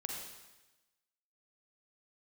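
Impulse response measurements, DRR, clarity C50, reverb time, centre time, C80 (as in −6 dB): 0.0 dB, 1.5 dB, 1.1 s, 60 ms, 3.5 dB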